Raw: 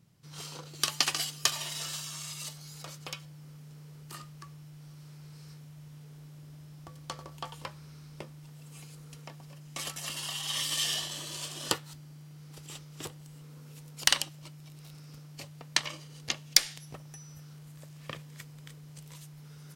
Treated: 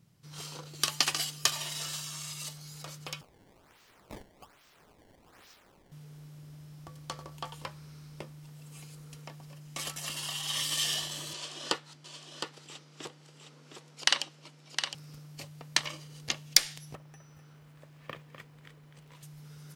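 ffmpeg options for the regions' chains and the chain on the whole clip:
-filter_complex "[0:a]asettb=1/sr,asplit=3[s0][s1][s2];[s0]atrim=end=3.214[s3];[s1]atrim=start=3.21:end=5.92,asetpts=PTS-STARTPTS,afade=t=in:d=0.004:c=qsin,afade=t=out:st=2.706:d=0.004:c=qsin,highpass=1100,highshelf=f=11000:g=11.5,acrusher=samples=20:mix=1:aa=0.000001:lfo=1:lforange=32:lforate=1.2[s4];[s2]atrim=start=5.916[s5];[s3][s4]acrossfade=d=0.004:c1=hsin:c2=qsin[s6];[s6][s5]acrossfade=d=0.004:c1=qsin:c2=hsin,asettb=1/sr,asplit=3[s7][s8][s9];[s7]atrim=end=11.334[s10];[s8]atrim=start=11.33:end=14.95,asetpts=PTS-STARTPTS,afade=t=in:d=0.004:c=qsin,afade=t=out:st=3.616:d=0.004:c=qsin,highpass=240,lowpass=6200,aecho=1:1:712:0.447,atrim=end_sample=159642[s11];[s9]atrim=start=14.946[s12];[s10][s11]acrossfade=d=0.004:c1=hsin:c2=qsin[s13];[s13][s12]acrossfade=d=0.004:c1=qsin:c2=hsin,asettb=1/sr,asplit=3[s14][s15][s16];[s14]atrim=end=16.954[s17];[s15]atrim=start=16.95:end=19.23,asetpts=PTS-STARTPTS,afade=t=in:d=0.004:c=qsin,afade=t=out:st=2.276:d=0.004:c=qsin,bass=f=250:g=-5,treble=f=4000:g=-15,acrusher=bits=6:mode=log:mix=0:aa=0.000001,aecho=1:1:251:0.316,atrim=end_sample=100548[s18];[s16]atrim=start=19.226[s19];[s17][s18]acrossfade=d=0.004:c1=hsin:c2=qsin[s20];[s20][s19]acrossfade=d=0.004:c1=qsin:c2=hsin"

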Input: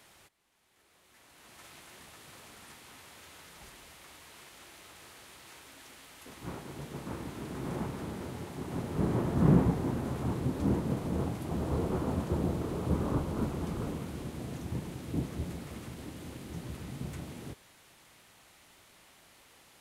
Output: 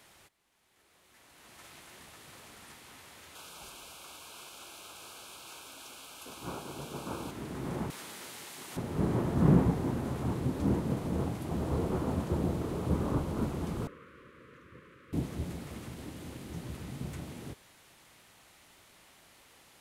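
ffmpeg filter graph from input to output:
-filter_complex "[0:a]asettb=1/sr,asplit=3[s0][s1][s2];[s0]atrim=end=3.354[s3];[s1]atrim=start=3.35:end=7.31,asetpts=PTS-STARTPTS,afade=t=in:d=0.004:c=qsin,afade=t=out:st=3.956:d=0.004:c=qsin,asuperstop=centerf=1900:order=4:qfactor=2.7,lowshelf=f=300:g=-9,acontrast=30[s4];[s2]atrim=start=7.306[s5];[s3][s4]acrossfade=d=0.004:c1=hsin:c2=qsin[s6];[s6][s5]acrossfade=d=0.004:c1=qsin:c2=hsin,asettb=1/sr,asplit=3[s7][s8][s9];[s7]atrim=end=7.904[s10];[s8]atrim=start=7.9:end=8.77,asetpts=PTS-STARTPTS,afade=t=in:d=0.004:c=qsin,afade=t=out:st=0.866:d=0.004:c=qsin,highpass=f=370:p=1,tiltshelf=f=1300:g=-9.5[s11];[s9]atrim=start=8.766[s12];[s10][s11]acrossfade=d=0.004:c1=hsin:c2=qsin[s13];[s13][s12]acrossfade=d=0.004:c1=qsin:c2=hsin,asettb=1/sr,asplit=3[s14][s15][s16];[s14]atrim=end=13.874[s17];[s15]atrim=start=13.87:end=15.13,asetpts=PTS-STARTPTS,afade=t=in:d=0.004:c=qsin,afade=t=out:st=1.256:d=0.004:c=qsin,asuperstop=centerf=770:order=8:qfactor=1.4,acrossover=split=570 2200:gain=0.0891 1 0.0708[s18][s19][s20];[s18][s19][s20]amix=inputs=3:normalize=0[s21];[s16]atrim=start=15.126[s22];[s17][s21]acrossfade=d=0.004:c1=hsin:c2=qsin[s23];[s23][s22]acrossfade=d=0.004:c1=qsin:c2=hsin"

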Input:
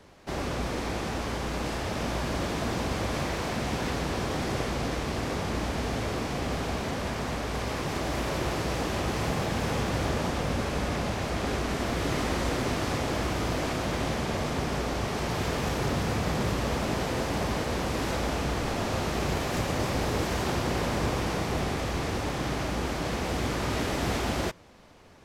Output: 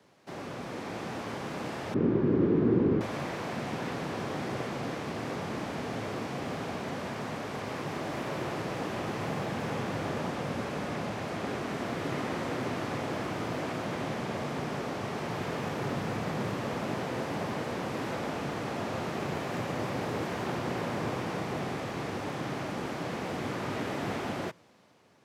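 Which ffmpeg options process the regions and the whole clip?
-filter_complex "[0:a]asettb=1/sr,asplit=3[s0][s1][s2];[s0]atrim=end=1.944[s3];[s1]atrim=start=1.94:end=3.01,asetpts=PTS-STARTPTS,afade=t=in:d=0.004:c=qsin,afade=t=out:st=1.066:d=0.004:c=qsin,lowpass=1400,lowshelf=f=510:t=q:w=3:g=9[s4];[s2]atrim=start=3.006[s5];[s3][s4]acrossfade=d=0.004:c1=hsin:c2=qsin[s6];[s6][s5]acrossfade=d=0.004:c1=qsin:c2=hsin,acrossover=split=2900[s7][s8];[s8]acompressor=threshold=0.00501:ratio=4:attack=1:release=60[s9];[s7][s9]amix=inputs=2:normalize=0,highpass=f=110:w=0.5412,highpass=f=110:w=1.3066,dynaudnorm=f=130:g=13:m=1.58,volume=0.422"

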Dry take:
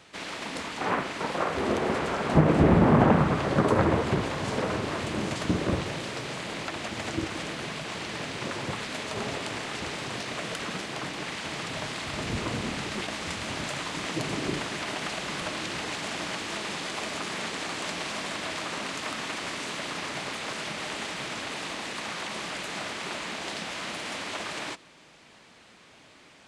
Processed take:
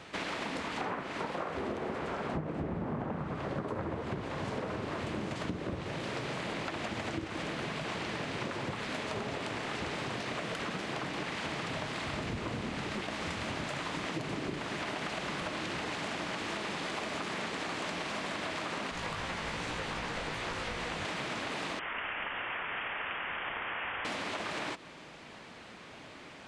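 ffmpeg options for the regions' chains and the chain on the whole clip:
-filter_complex "[0:a]asettb=1/sr,asplit=3[s0][s1][s2];[s0]atrim=end=18.914[s3];[s1]atrim=start=18.91:end=21.05,asetpts=PTS-STARTPTS,afade=t=in:d=0.004:c=qsin,afade=t=out:st=2.136:d=0.004:c=qsin,afreqshift=-120,flanger=delay=16.5:depth=2.8:speed=2.6[s4];[s2]atrim=start=21.046[s5];[s3][s4]acrossfade=d=0.004:c1=hsin:c2=qsin[s6];[s6][s5]acrossfade=d=0.004:c1=qsin:c2=hsin,asettb=1/sr,asplit=3[s7][s8][s9];[s7]atrim=end=21.794[s10];[s8]atrim=start=21.79:end=24.05,asetpts=PTS-STARTPTS,afade=t=in:d=0.004:c=qsin,afade=t=out:st=2.256:d=0.004:c=qsin,highpass=1200,lowpass=f=3300:t=q:w=0.5098,lowpass=f=3300:t=q:w=0.6013,lowpass=f=3300:t=q:w=0.9,lowpass=f=3300:t=q:w=2.563,afreqshift=-3900[s11];[s9]atrim=start=24.046[s12];[s10][s11]acrossfade=d=0.004:c1=hsin:c2=qsin[s13];[s13][s12]acrossfade=d=0.004:c1=qsin:c2=hsin,highshelf=f=4200:g=-10,acompressor=threshold=0.0112:ratio=12,volume=2"

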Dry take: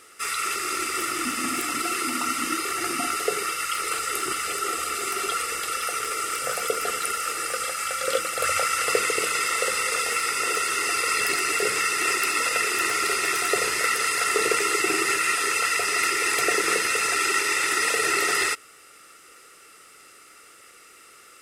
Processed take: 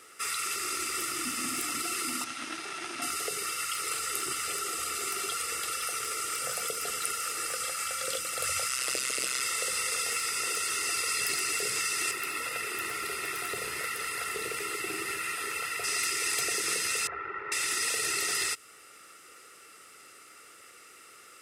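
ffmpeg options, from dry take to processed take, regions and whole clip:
-filter_complex "[0:a]asettb=1/sr,asplit=3[s0][s1][s2];[s0]atrim=end=2.244[s3];[s1]atrim=start=2.24:end=3.02,asetpts=PTS-STARTPTS,afade=t=in:d=0.004:c=qsin,afade=t=out:st=0.776:d=0.004:c=qsin,aeval=exprs='max(val(0),0)':c=same,highpass=240,equalizer=f=510:t=q:w=4:g=-6,equalizer=f=1100:t=q:w=4:g=-5,equalizer=f=4400:t=q:w=4:g=-3,equalizer=f=7400:t=q:w=4:g=-9,lowpass=f=8700:w=0.5412,lowpass=f=8700:w=1.3066[s4];[s2]atrim=start=3.016[s5];[s3][s4]acrossfade=d=0.004:c1=hsin:c2=qsin[s6];[s6][s5]acrossfade=d=0.004:c1=qsin:c2=hsin,asettb=1/sr,asplit=3[s7][s8][s9];[s7]atrim=end=8.694[s10];[s8]atrim=start=8.69:end=9.42,asetpts=PTS-STARTPTS,afade=t=in:d=0.004:c=qsin,afade=t=out:st=0.726:d=0.004:c=qsin,equalizer=f=5100:w=0.39:g=4.5,tremolo=f=130:d=0.919[s11];[s9]atrim=start=9.416[s12];[s10][s11]acrossfade=d=0.004:c1=hsin:c2=qsin[s13];[s13][s12]acrossfade=d=0.004:c1=qsin:c2=hsin,asettb=1/sr,asplit=3[s14][s15][s16];[s14]atrim=end=12.114[s17];[s15]atrim=start=12.11:end=15.84,asetpts=PTS-STARTPTS,afade=t=in:d=0.004:c=qsin,afade=t=out:st=3.726:d=0.004:c=qsin,equalizer=f=6400:t=o:w=1.5:g=-11,asoftclip=type=hard:threshold=0.133[s18];[s16]atrim=start=15.836[s19];[s17][s18]acrossfade=d=0.004:c1=hsin:c2=qsin[s20];[s20][s19]acrossfade=d=0.004:c1=qsin:c2=hsin,asettb=1/sr,asplit=3[s21][s22][s23];[s21]atrim=end=17.074[s24];[s22]atrim=start=17.07:end=17.52,asetpts=PTS-STARTPTS,afade=t=in:d=0.004:c=qsin,afade=t=out:st=0.446:d=0.004:c=qsin,lowpass=f=1600:w=0.5412,lowpass=f=1600:w=1.3066,equalizer=f=260:t=o:w=0.49:g=-14[s25];[s23]atrim=start=17.516[s26];[s24][s25]acrossfade=d=0.004:c1=hsin:c2=qsin[s27];[s27][s26]acrossfade=d=0.004:c1=qsin:c2=hsin,highpass=56,acrossover=split=170|3000[s28][s29][s30];[s29]acompressor=threshold=0.0224:ratio=6[s31];[s28][s31][s30]amix=inputs=3:normalize=0,volume=0.75"

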